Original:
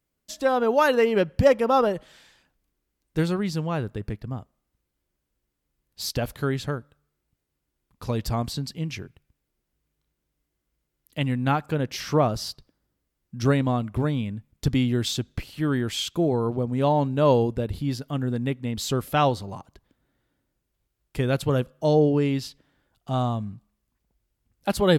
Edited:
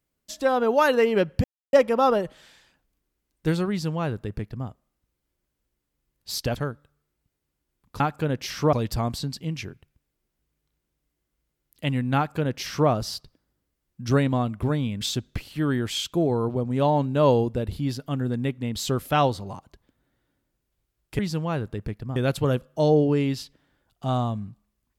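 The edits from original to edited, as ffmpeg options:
ffmpeg -i in.wav -filter_complex "[0:a]asplit=8[link_01][link_02][link_03][link_04][link_05][link_06][link_07][link_08];[link_01]atrim=end=1.44,asetpts=PTS-STARTPTS,afade=type=out:start_time=1.436:duration=0.004:curve=hsin,apad=pad_dur=0.29[link_09];[link_02]atrim=start=1.44:end=6.272,asetpts=PTS-STARTPTS,afade=type=in:duration=0.004:curve=hsin[link_10];[link_03]atrim=start=6.628:end=8.072[link_11];[link_04]atrim=start=11.498:end=12.232[link_12];[link_05]atrim=start=8.068:end=14.352[link_13];[link_06]atrim=start=15.028:end=21.212[link_14];[link_07]atrim=start=3.408:end=4.382[link_15];[link_08]atrim=start=21.208[link_16];[link_09][link_10]concat=n=2:v=0:a=1[link_17];[link_17][link_11]acrossfade=duration=0.004:curve1=hsin:curve2=hsin[link_18];[link_18][link_12]acrossfade=duration=0.004:curve1=hsin:curve2=hsin[link_19];[link_19][link_13]acrossfade=duration=0.004:curve1=hsin:curve2=hsin[link_20];[link_20][link_14]acrossfade=duration=0.004:curve1=hsin:curve2=hsin[link_21];[link_21][link_15]acrossfade=duration=0.004:curve1=hsin:curve2=hsin[link_22];[link_22][link_16]acrossfade=duration=0.004:curve1=hsin:curve2=hsin" out.wav

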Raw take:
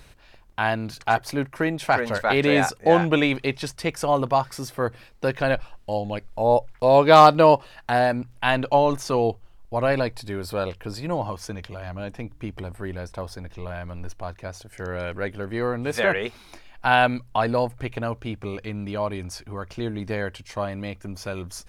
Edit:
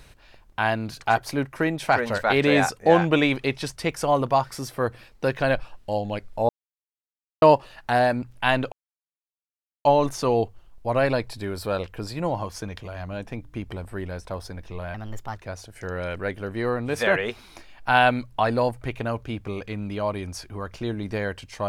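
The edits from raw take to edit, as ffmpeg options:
ffmpeg -i in.wav -filter_complex "[0:a]asplit=6[link_01][link_02][link_03][link_04][link_05][link_06];[link_01]atrim=end=6.49,asetpts=PTS-STARTPTS,afade=type=out:start_time=6.486:duration=0.004:curve=hsin[link_07];[link_02]atrim=start=6.49:end=7.42,asetpts=PTS-STARTPTS,volume=0[link_08];[link_03]atrim=start=7.42:end=8.72,asetpts=PTS-STARTPTS,afade=type=in:duration=0.004:curve=hsin,afade=type=out:start_time=1.296:duration=0.004:curve=hsin,apad=pad_dur=1.13[link_09];[link_04]atrim=start=8.72:end=13.814,asetpts=PTS-STARTPTS,afade=type=in:duration=0.004:curve=hsin[link_10];[link_05]atrim=start=13.81:end=14.33,asetpts=PTS-STARTPTS,asetrate=54243,aresample=44100[link_11];[link_06]atrim=start=14.326[link_12];[link_07][link_08][link_09][link_10]concat=n=4:v=0:a=1[link_13];[link_13][link_11]acrossfade=duration=0.004:curve1=hsin:curve2=hsin[link_14];[link_14][link_12]acrossfade=duration=0.004:curve1=hsin:curve2=hsin" out.wav

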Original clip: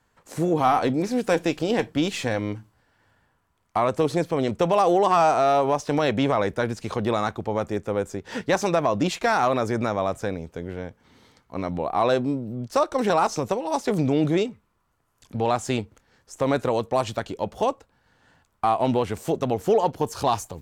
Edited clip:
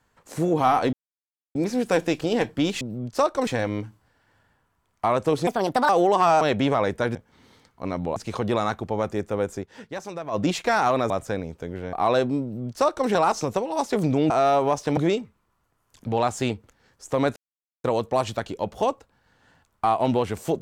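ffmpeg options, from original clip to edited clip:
ffmpeg -i in.wav -filter_complex "[0:a]asplit=16[link_01][link_02][link_03][link_04][link_05][link_06][link_07][link_08][link_09][link_10][link_11][link_12][link_13][link_14][link_15][link_16];[link_01]atrim=end=0.93,asetpts=PTS-STARTPTS,afade=type=out:start_time=0.926:duration=0.004:curve=hsin,apad=pad_dur=0.62[link_17];[link_02]atrim=start=0.93:end=2.192,asetpts=PTS-STARTPTS,afade=type=in:duration=0.004:curve=hsin[link_18];[link_03]atrim=start=12.378:end=13.042[link_19];[link_04]atrim=start=2.188:end=4.194[link_20];[link_05]atrim=start=4.19:end=4.8,asetpts=PTS-STARTPTS,asetrate=63945,aresample=44100,atrim=end_sample=18552,asetpts=PTS-STARTPTS[link_21];[link_06]atrim=start=4.796:end=5.322[link_22];[link_07]atrim=start=5.988:end=6.732[link_23];[link_08]atrim=start=10.868:end=11.882[link_24];[link_09]atrim=start=6.728:end=8.44,asetpts=PTS-STARTPTS,afade=type=out:start_time=1.472:duration=0.24:curve=exp:silence=0.251189[link_25];[link_10]atrim=start=8.44:end=8.68,asetpts=PTS-STARTPTS,volume=-12dB[link_26];[link_11]atrim=start=8.68:end=9.672,asetpts=PTS-STARTPTS,afade=type=in:duration=0.24:curve=exp:silence=0.251189[link_27];[link_12]atrim=start=10.038:end=10.872[link_28];[link_13]atrim=start=11.878:end=14.252[link_29];[link_14]atrim=start=5.318:end=5.992[link_30];[link_15]atrim=start=14.248:end=16.64,asetpts=PTS-STARTPTS,afade=type=out:start_time=2.388:duration=0.004:curve=hsin,apad=pad_dur=0.48[link_31];[link_16]atrim=start=16.64,asetpts=PTS-STARTPTS,afade=type=in:duration=0.004:curve=hsin[link_32];[link_17][link_18]concat=n=2:v=0:a=1[link_33];[link_33][link_19]acrossfade=duration=0.004:curve1=hsin:curve2=hsin[link_34];[link_34][link_20]acrossfade=duration=0.004:curve1=hsin:curve2=hsin[link_35];[link_35][link_21]acrossfade=duration=0.004:curve1=hsin:curve2=hsin[link_36];[link_36][link_22]acrossfade=duration=0.004:curve1=hsin:curve2=hsin[link_37];[link_37][link_23]acrossfade=duration=0.004:curve1=hsin:curve2=hsin[link_38];[link_38][link_24]acrossfade=duration=0.004:curve1=hsin:curve2=hsin[link_39];[link_25][link_26][link_27]concat=n=3:v=0:a=1[link_40];[link_39][link_40]acrossfade=duration=0.004:curve1=hsin:curve2=hsin[link_41];[link_41][link_28]acrossfade=duration=0.004:curve1=hsin:curve2=hsin[link_42];[link_42][link_29]acrossfade=duration=0.004:curve1=hsin:curve2=hsin[link_43];[link_43][link_30]acrossfade=duration=0.004:curve1=hsin:curve2=hsin[link_44];[link_31][link_32]concat=n=2:v=0:a=1[link_45];[link_44][link_45]acrossfade=duration=0.004:curve1=hsin:curve2=hsin" out.wav

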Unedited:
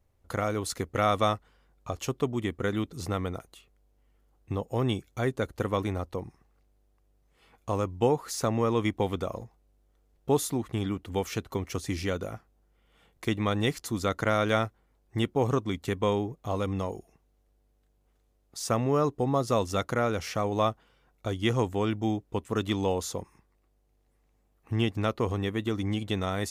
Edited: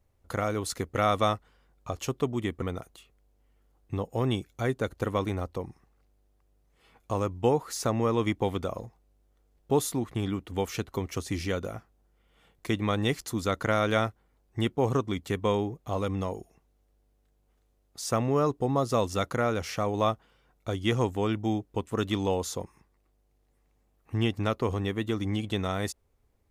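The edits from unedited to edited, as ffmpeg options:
ffmpeg -i in.wav -filter_complex "[0:a]asplit=2[link_01][link_02];[link_01]atrim=end=2.622[link_03];[link_02]atrim=start=3.198[link_04];[link_03][link_04]acrossfade=duration=0.004:curve1=hsin:curve2=hsin" out.wav

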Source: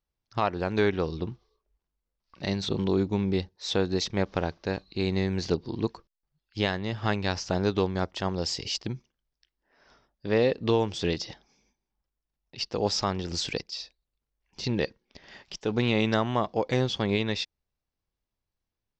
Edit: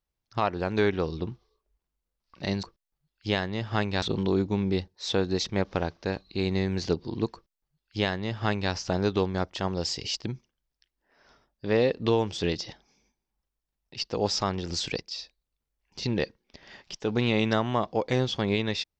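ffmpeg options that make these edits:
ffmpeg -i in.wav -filter_complex "[0:a]asplit=3[link_01][link_02][link_03];[link_01]atrim=end=2.632[link_04];[link_02]atrim=start=5.938:end=7.332[link_05];[link_03]atrim=start=2.628[link_06];[link_04][link_05]acrossfade=duration=0.004:curve1=hsin:curve2=hsin[link_07];[link_07][link_06]acrossfade=duration=0.004:curve1=hsin:curve2=hsin" out.wav

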